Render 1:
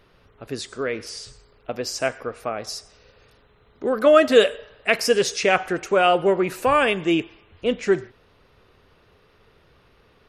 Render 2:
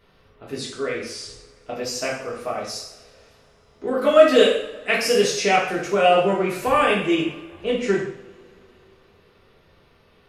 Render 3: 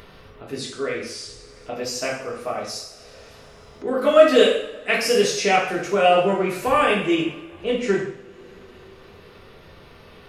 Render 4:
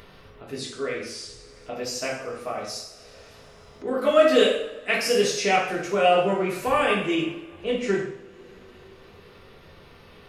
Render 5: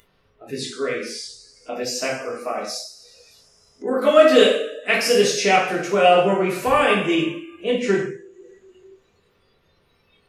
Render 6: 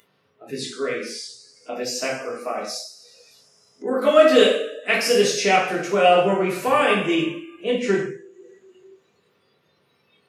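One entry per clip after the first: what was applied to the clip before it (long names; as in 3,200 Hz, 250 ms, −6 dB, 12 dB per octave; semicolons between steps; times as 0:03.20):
coupled-rooms reverb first 0.59 s, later 3.6 s, from −27 dB, DRR −5.5 dB; level −6 dB
upward compression, threshold −35 dBFS
hum removal 56.83 Hz, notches 30; level −2.5 dB
noise reduction from a noise print of the clip's start 18 dB; level +4.5 dB
high-pass filter 120 Hz 24 dB per octave; level −1 dB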